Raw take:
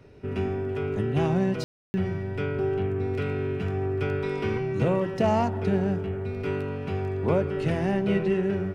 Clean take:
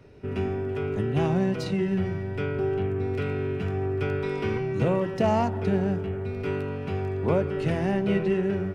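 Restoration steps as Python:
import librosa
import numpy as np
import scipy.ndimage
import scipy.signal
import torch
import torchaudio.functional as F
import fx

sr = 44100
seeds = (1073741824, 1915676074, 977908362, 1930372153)

y = fx.fix_ambience(x, sr, seeds[0], print_start_s=0.0, print_end_s=0.5, start_s=1.64, end_s=1.94)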